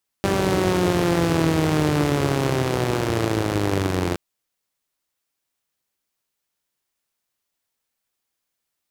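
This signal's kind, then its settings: four-cylinder engine model, changing speed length 3.92 s, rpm 5900, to 2600, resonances 100/150/310 Hz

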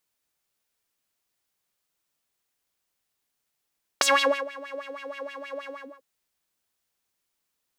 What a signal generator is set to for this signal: synth patch with filter wobble C#5, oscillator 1 saw, sub -10 dB, noise -15 dB, filter bandpass, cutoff 450 Hz, Q 3.4, filter envelope 3 oct, attack 2.2 ms, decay 0.43 s, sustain -23 dB, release 0.29 s, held 1.71 s, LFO 6.3 Hz, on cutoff 1.4 oct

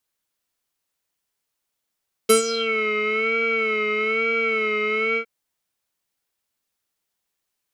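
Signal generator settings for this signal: synth patch with vibrato A4, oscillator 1 square, interval +19 st, oscillator 2 level -11 dB, sub -11 dB, noise -27 dB, filter lowpass, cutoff 2100 Hz, Q 6.9, filter envelope 2.5 oct, filter decay 0.40 s, filter sustain 5%, attack 11 ms, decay 0.12 s, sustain -13.5 dB, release 0.08 s, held 2.88 s, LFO 1.1 Hz, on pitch 63 cents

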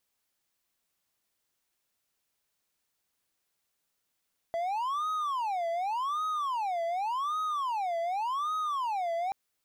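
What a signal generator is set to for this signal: siren wail 669–1260 Hz 0.87/s triangle -26.5 dBFS 4.78 s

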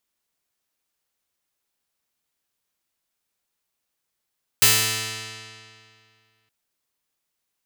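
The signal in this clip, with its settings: plucked string A2, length 1.87 s, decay 2.30 s, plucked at 0.4, bright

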